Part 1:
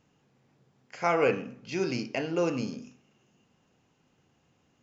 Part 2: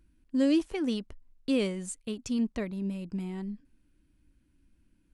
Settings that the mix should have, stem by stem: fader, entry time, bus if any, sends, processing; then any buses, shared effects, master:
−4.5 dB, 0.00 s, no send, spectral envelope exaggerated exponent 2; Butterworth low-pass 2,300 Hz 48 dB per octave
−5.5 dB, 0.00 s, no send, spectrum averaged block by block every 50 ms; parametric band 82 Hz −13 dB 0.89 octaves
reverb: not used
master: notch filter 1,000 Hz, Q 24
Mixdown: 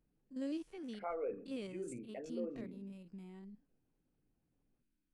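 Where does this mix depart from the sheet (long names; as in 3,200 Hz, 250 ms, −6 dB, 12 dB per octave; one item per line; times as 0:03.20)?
stem 1 −4.5 dB → −15.0 dB
stem 2 −5.5 dB → −14.5 dB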